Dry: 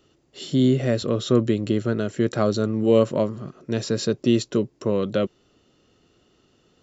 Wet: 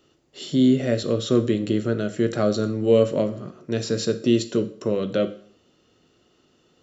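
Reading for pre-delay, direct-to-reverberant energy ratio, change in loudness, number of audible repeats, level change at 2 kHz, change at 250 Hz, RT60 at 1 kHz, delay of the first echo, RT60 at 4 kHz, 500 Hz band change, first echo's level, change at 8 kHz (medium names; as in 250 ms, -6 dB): 6 ms, 9.0 dB, 0.0 dB, no echo, 0.0 dB, +0.5 dB, 0.55 s, no echo, 0.50 s, +0.5 dB, no echo, no reading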